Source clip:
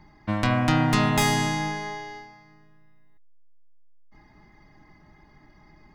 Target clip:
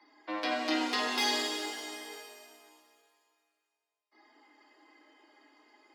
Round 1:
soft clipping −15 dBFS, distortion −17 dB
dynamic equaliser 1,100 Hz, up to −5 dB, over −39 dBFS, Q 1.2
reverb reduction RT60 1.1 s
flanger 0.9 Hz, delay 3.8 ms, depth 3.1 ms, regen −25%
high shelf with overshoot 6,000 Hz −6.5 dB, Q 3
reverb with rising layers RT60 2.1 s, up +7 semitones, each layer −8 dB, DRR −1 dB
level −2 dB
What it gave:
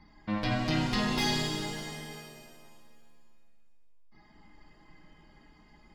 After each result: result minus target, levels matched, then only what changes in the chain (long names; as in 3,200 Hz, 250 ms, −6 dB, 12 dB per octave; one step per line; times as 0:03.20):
soft clipping: distortion +9 dB; 250 Hz band +4.0 dB
change: soft clipping −9 dBFS, distortion −25 dB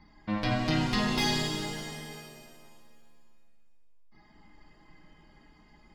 250 Hz band +4.0 dB
add after flanger: Butterworth high-pass 260 Hz 96 dB per octave